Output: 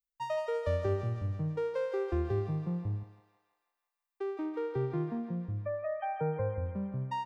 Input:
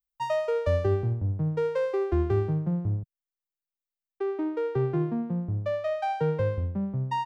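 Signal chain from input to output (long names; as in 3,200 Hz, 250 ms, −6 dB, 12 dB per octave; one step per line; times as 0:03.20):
0:03.00–0:04.46: high-shelf EQ 3,900 Hz +7.5 dB
0:05.17–0:06.66: gate on every frequency bin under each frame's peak −25 dB strong
feedback echo with a high-pass in the loop 165 ms, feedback 66%, high-pass 650 Hz, level −5.5 dB
level −6.5 dB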